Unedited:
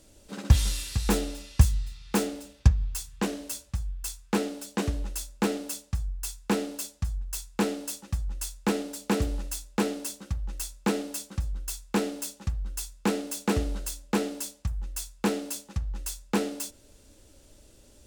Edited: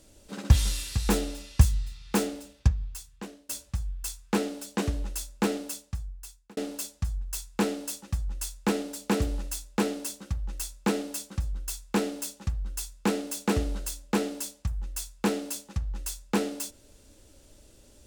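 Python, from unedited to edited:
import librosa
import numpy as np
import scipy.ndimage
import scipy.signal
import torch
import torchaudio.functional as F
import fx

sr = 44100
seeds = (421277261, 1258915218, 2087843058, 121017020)

y = fx.edit(x, sr, fx.fade_out_to(start_s=2.25, length_s=1.24, floor_db=-23.0),
    fx.fade_out_span(start_s=5.56, length_s=1.01), tone=tone)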